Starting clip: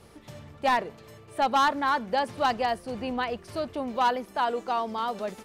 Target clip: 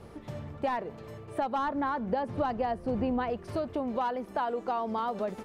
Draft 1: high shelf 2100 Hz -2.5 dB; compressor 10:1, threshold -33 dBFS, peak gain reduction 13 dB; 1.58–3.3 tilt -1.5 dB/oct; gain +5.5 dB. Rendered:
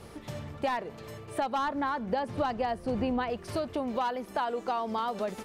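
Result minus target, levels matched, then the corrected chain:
4000 Hz band +6.0 dB
high shelf 2100 Hz -12.5 dB; compressor 10:1, threshold -33 dBFS, peak gain reduction 12 dB; 1.58–3.3 tilt -1.5 dB/oct; gain +5.5 dB

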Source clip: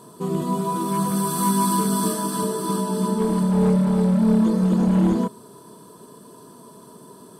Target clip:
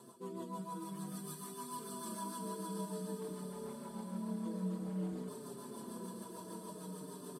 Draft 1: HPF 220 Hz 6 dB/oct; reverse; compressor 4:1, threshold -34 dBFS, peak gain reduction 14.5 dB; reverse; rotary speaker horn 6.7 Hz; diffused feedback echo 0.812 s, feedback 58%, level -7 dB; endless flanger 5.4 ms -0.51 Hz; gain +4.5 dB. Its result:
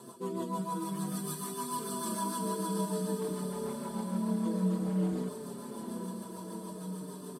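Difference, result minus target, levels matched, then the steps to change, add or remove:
compressor: peak gain reduction -8.5 dB
change: compressor 4:1, threshold -45.5 dBFS, peak gain reduction 23 dB

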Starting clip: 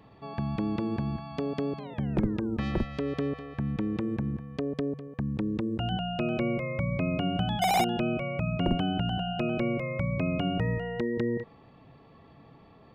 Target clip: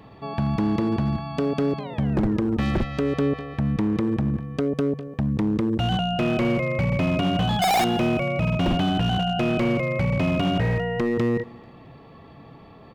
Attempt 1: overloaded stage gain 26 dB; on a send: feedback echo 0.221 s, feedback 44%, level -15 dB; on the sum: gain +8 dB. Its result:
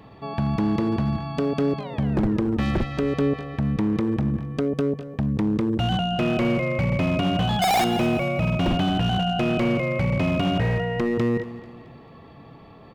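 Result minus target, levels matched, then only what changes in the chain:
echo-to-direct +8.5 dB
change: feedback echo 0.221 s, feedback 44%, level -23.5 dB

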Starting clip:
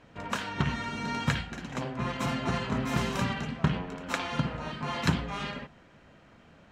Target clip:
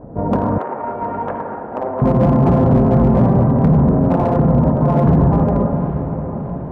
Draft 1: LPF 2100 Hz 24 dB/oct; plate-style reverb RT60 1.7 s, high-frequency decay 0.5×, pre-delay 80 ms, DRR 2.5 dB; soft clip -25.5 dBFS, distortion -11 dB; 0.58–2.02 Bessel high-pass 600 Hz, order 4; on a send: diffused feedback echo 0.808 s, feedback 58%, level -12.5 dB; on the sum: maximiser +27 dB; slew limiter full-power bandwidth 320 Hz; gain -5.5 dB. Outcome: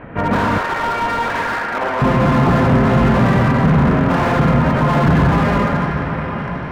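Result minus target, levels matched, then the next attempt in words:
2000 Hz band +17.5 dB
LPF 780 Hz 24 dB/oct; plate-style reverb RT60 1.7 s, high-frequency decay 0.5×, pre-delay 80 ms, DRR 2.5 dB; soft clip -25.5 dBFS, distortion -11 dB; 0.58–2.02 Bessel high-pass 600 Hz, order 4; on a send: diffused feedback echo 0.808 s, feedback 58%, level -12.5 dB; on the sum: maximiser +27 dB; slew limiter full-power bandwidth 320 Hz; gain -5.5 dB

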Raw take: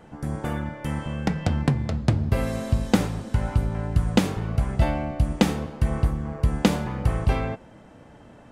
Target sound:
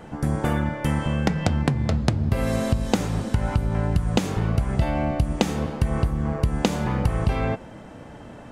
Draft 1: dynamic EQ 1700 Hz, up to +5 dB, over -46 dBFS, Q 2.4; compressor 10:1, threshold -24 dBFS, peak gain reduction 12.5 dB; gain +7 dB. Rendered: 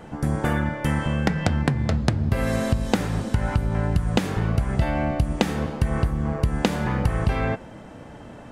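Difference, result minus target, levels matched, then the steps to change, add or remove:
2000 Hz band +3.0 dB
change: dynamic EQ 6600 Hz, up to +5 dB, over -46 dBFS, Q 2.4

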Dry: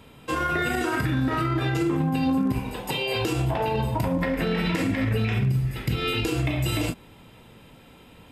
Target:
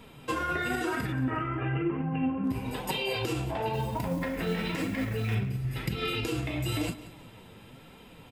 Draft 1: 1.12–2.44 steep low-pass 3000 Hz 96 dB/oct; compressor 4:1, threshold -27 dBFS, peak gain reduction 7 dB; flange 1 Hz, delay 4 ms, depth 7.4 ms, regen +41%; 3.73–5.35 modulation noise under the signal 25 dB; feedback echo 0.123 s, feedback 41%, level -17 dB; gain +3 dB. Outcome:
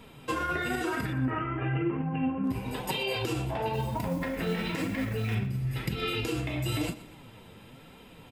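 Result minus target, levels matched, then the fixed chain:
echo 56 ms early
1.12–2.44 steep low-pass 3000 Hz 96 dB/oct; compressor 4:1, threshold -27 dBFS, peak gain reduction 7 dB; flange 1 Hz, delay 4 ms, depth 7.4 ms, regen +41%; 3.73–5.35 modulation noise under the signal 25 dB; feedback echo 0.179 s, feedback 41%, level -17 dB; gain +3 dB

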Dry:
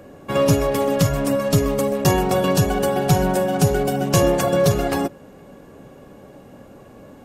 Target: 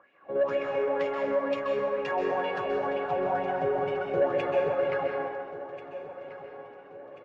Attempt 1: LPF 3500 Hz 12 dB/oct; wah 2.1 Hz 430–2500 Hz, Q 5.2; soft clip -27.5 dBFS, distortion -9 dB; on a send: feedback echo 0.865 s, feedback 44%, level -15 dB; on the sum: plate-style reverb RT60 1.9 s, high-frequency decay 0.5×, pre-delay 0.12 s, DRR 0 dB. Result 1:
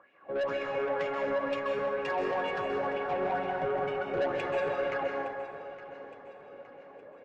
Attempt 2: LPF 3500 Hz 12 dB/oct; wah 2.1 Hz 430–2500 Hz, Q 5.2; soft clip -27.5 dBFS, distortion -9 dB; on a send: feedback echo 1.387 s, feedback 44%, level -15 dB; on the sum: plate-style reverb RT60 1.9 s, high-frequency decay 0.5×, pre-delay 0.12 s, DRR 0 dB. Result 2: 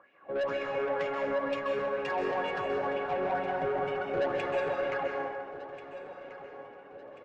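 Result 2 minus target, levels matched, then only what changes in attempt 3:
soft clip: distortion +10 dB
change: soft clip -18 dBFS, distortion -19 dB

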